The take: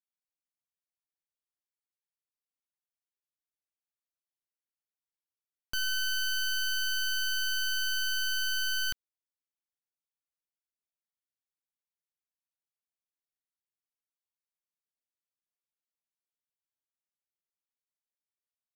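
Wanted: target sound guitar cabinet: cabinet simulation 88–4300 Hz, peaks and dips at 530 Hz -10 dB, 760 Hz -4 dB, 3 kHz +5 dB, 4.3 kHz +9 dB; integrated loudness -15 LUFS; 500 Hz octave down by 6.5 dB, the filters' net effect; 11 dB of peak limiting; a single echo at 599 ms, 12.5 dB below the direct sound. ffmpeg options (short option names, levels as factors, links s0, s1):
-af "equalizer=f=500:t=o:g=-3.5,alimiter=level_in=5.96:limit=0.0631:level=0:latency=1,volume=0.168,highpass=88,equalizer=f=530:t=q:w=4:g=-10,equalizer=f=760:t=q:w=4:g=-4,equalizer=f=3000:t=q:w=4:g=5,equalizer=f=4300:t=q:w=4:g=9,lowpass=f=4300:w=0.5412,lowpass=f=4300:w=1.3066,aecho=1:1:599:0.237,volume=13.3"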